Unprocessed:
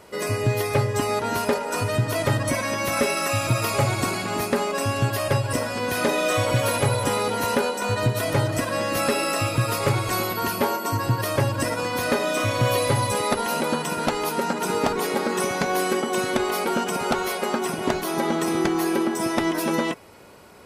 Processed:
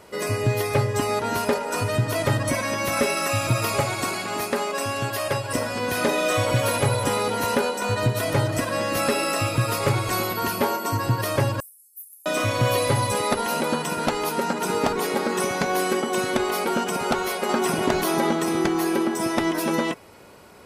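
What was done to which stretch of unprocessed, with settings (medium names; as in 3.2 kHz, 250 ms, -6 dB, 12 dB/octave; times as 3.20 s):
3.80–5.55 s: bass shelf 230 Hz -10 dB
11.60–12.26 s: inverse Chebyshev high-pass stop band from 2.5 kHz, stop band 80 dB
17.49–18.33 s: level flattener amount 50%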